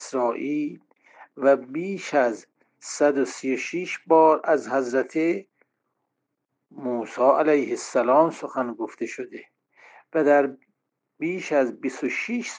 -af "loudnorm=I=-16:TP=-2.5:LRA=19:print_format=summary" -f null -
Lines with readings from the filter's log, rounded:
Input Integrated:    -23.5 LUFS
Input True Peak:      -4.7 dBTP
Input LRA:             3.3 LU
Input Threshold:     -34.5 LUFS